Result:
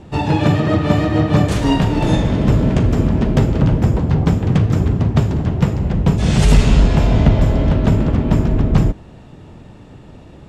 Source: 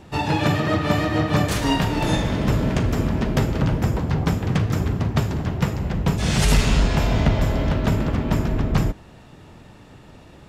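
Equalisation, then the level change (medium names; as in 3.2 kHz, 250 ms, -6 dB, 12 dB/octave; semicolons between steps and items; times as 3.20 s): tilt shelf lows +9.5 dB, about 1.4 kHz; peaking EQ 3.2 kHz +7.5 dB 1.6 oct; peaking EQ 8 kHz +9 dB 1.2 oct; -2.5 dB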